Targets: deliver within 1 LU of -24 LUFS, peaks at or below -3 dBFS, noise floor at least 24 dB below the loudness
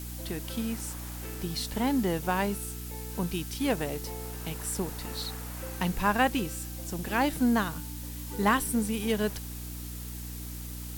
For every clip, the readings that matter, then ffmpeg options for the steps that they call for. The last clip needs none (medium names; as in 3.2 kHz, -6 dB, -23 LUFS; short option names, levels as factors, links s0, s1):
hum 60 Hz; highest harmonic 300 Hz; hum level -37 dBFS; noise floor -39 dBFS; noise floor target -55 dBFS; loudness -31.0 LUFS; peak level -11.0 dBFS; loudness target -24.0 LUFS
-> -af "bandreject=f=60:t=h:w=4,bandreject=f=120:t=h:w=4,bandreject=f=180:t=h:w=4,bandreject=f=240:t=h:w=4,bandreject=f=300:t=h:w=4"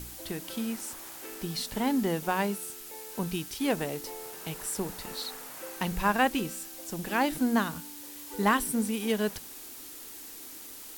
hum not found; noise floor -45 dBFS; noise floor target -56 dBFS
-> -af "afftdn=nr=11:nf=-45"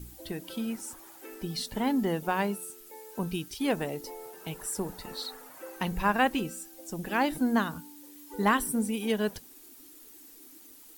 noise floor -52 dBFS; noise floor target -55 dBFS
-> -af "afftdn=nr=6:nf=-52"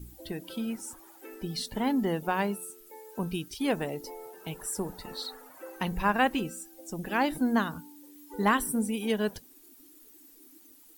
noise floor -56 dBFS; loudness -31.0 LUFS; peak level -12.0 dBFS; loudness target -24.0 LUFS
-> -af "volume=2.24"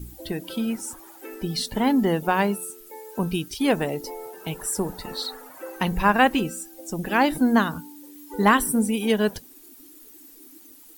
loudness -24.0 LUFS; peak level -5.0 dBFS; noise floor -49 dBFS